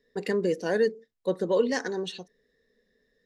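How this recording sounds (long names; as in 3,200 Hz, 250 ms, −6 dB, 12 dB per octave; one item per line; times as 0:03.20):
background noise floor −74 dBFS
spectral slope −4.0 dB per octave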